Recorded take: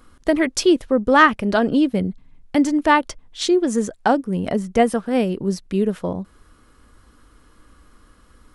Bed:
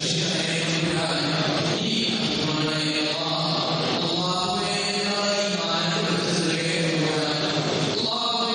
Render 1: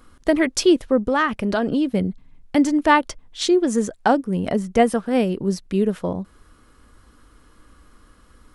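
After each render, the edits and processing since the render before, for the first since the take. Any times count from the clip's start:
0:01.05–0:01.93: downward compressor 3 to 1, threshold −17 dBFS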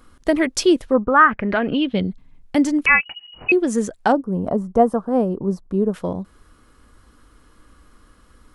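0:00.93–0:02.10: low-pass with resonance 1,000 Hz → 4,200 Hz, resonance Q 4.4
0:02.86–0:03.52: voice inversion scrambler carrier 2,900 Hz
0:04.12–0:05.94: drawn EQ curve 370 Hz 0 dB, 1,100 Hz +4 dB, 2,200 Hz −21 dB, 7,400 Hz −13 dB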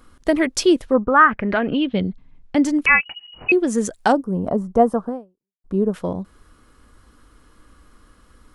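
0:01.61–0:02.64: high-frequency loss of the air 86 metres
0:03.85–0:04.32: high-shelf EQ 3,600 Hz +9 dB
0:05.09–0:05.64: fade out exponential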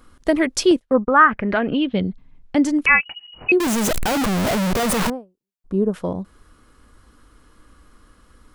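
0:00.71–0:01.26: noise gate −29 dBFS, range −29 dB
0:03.60–0:05.10: sign of each sample alone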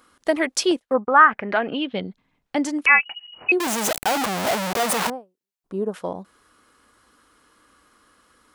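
high-pass filter 560 Hz 6 dB per octave
dynamic equaliser 780 Hz, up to +5 dB, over −40 dBFS, Q 3.3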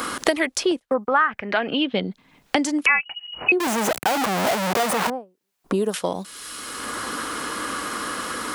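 multiband upward and downward compressor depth 100%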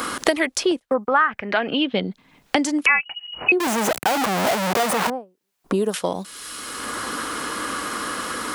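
level +1 dB

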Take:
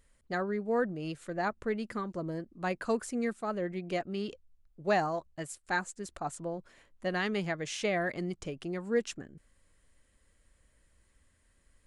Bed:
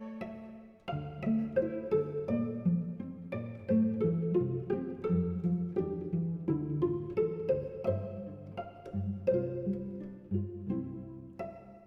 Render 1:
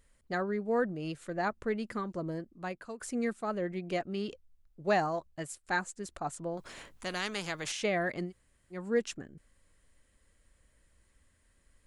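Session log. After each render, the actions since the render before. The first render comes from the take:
0:02.32–0:03.00: fade out, to −18 dB
0:06.57–0:07.72: every bin compressed towards the loudest bin 2 to 1
0:08.28–0:08.75: fill with room tone, crossfade 0.10 s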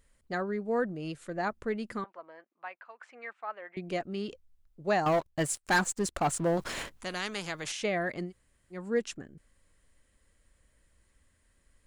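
0:02.04–0:03.77: Chebyshev band-pass filter 820–2,500 Hz
0:05.06–0:06.90: leveller curve on the samples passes 3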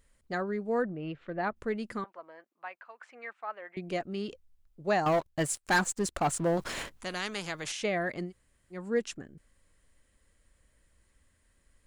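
0:00.82–0:01.55: low-pass filter 2,400 Hz → 4,100 Hz 24 dB per octave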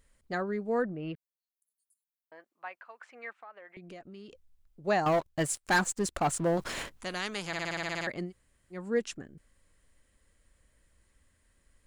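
0:01.15–0:02.32: inverse Chebyshev high-pass filter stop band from 2,300 Hz, stop band 80 dB
0:03.40–0:04.84: downward compressor 4 to 1, threshold −46 dBFS
0:07.47: stutter in place 0.06 s, 10 plays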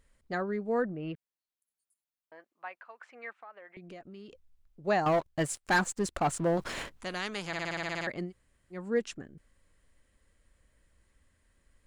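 high-shelf EQ 5,700 Hz −5.5 dB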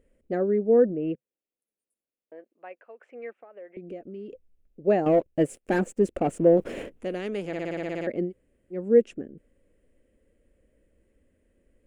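drawn EQ curve 140 Hz 0 dB, 230 Hz +9 dB, 510 Hz +12 dB, 1,000 Hz −10 dB, 2,700 Hz −2 dB, 4,100 Hz −15 dB, 9,100 Hz −7 dB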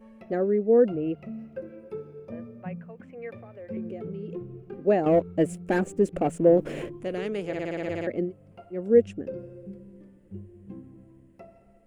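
mix in bed −7.5 dB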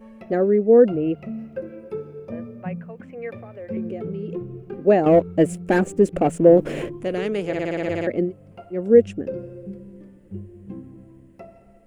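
level +6 dB
brickwall limiter −3 dBFS, peak gain reduction 1.5 dB

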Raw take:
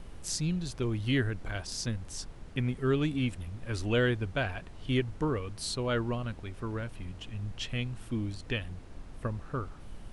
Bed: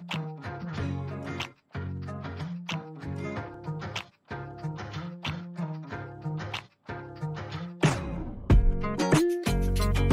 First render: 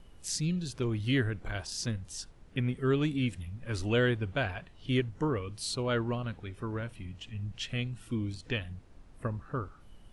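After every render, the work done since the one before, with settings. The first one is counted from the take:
noise reduction from a noise print 9 dB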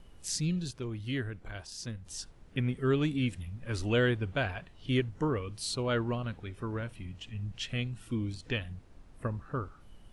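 0:00.71–0:02.06: clip gain −6 dB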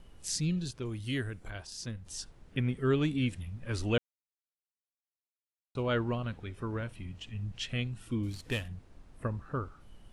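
0:00.85–0:01.50: parametric band 9,400 Hz +12 dB 1.3 octaves
0:03.98–0:05.75: silence
0:08.23–0:08.68: variable-slope delta modulation 64 kbit/s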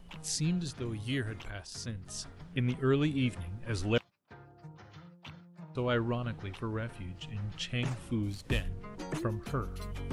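mix in bed −15 dB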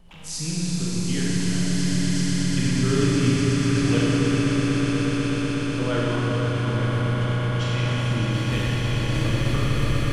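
echo that builds up and dies away 123 ms, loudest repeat 8, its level −7.5 dB
four-comb reverb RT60 3.5 s, combs from 28 ms, DRR −6 dB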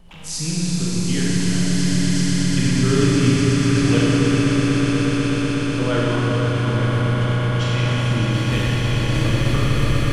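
level +4 dB

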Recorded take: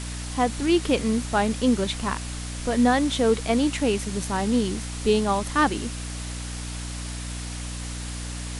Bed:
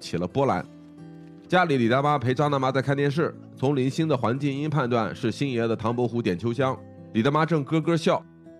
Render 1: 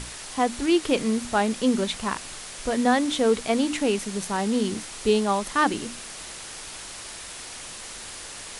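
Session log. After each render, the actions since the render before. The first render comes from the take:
mains-hum notches 60/120/180/240/300 Hz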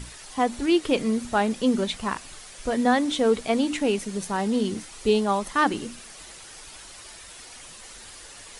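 broadband denoise 8 dB, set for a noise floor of −39 dBFS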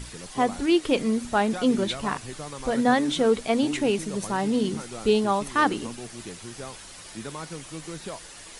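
mix in bed −15.5 dB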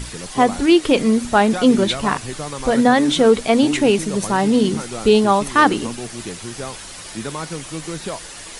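level +8.5 dB
brickwall limiter −3 dBFS, peak gain reduction 3 dB

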